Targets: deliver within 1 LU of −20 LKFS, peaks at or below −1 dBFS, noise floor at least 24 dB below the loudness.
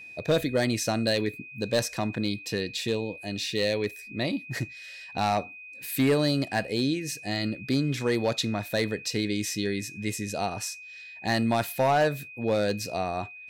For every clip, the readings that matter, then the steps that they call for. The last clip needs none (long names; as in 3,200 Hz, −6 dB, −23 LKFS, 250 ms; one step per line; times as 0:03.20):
share of clipped samples 0.5%; peaks flattened at −17.0 dBFS; interfering tone 2,500 Hz; level of the tone −42 dBFS; integrated loudness −28.0 LKFS; sample peak −17.0 dBFS; target loudness −20.0 LKFS
→ clipped peaks rebuilt −17 dBFS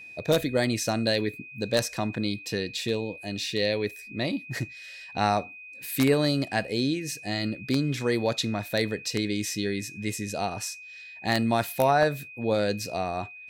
share of clipped samples 0.0%; interfering tone 2,500 Hz; level of the tone −42 dBFS
→ notch filter 2,500 Hz, Q 30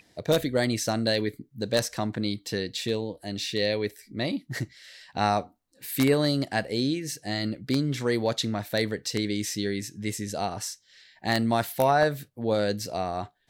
interfering tone none found; integrated loudness −28.0 LKFS; sample peak −8.0 dBFS; target loudness −20.0 LKFS
→ level +8 dB
brickwall limiter −1 dBFS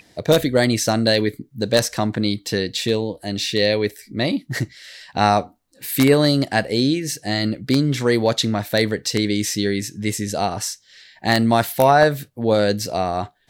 integrated loudness −20.0 LKFS; sample peak −1.0 dBFS; background noise floor −57 dBFS